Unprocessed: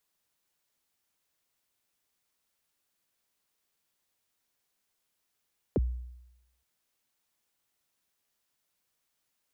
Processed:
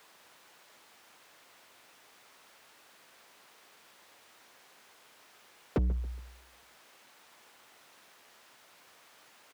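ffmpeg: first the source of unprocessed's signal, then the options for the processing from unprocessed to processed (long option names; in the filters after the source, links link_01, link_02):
-f lavfi -i "aevalsrc='0.0891*pow(10,-3*t/0.91)*sin(2*PI*(570*0.031/log(61/570)*(exp(log(61/570)*min(t,0.031)/0.031)-1)+61*max(t-0.031,0)))':duration=0.87:sample_rate=44100"
-filter_complex "[0:a]asplit=2[link_01][link_02];[link_02]highpass=frequency=720:poles=1,volume=38dB,asoftclip=type=tanh:threshold=-21dB[link_03];[link_01][link_03]amix=inputs=2:normalize=0,lowpass=frequency=1300:poles=1,volume=-6dB,asplit=2[link_04][link_05];[link_05]adelay=139,lowpass=frequency=2000:poles=1,volume=-16dB,asplit=2[link_06][link_07];[link_07]adelay=139,lowpass=frequency=2000:poles=1,volume=0.36,asplit=2[link_08][link_09];[link_09]adelay=139,lowpass=frequency=2000:poles=1,volume=0.36[link_10];[link_04][link_06][link_08][link_10]amix=inputs=4:normalize=0"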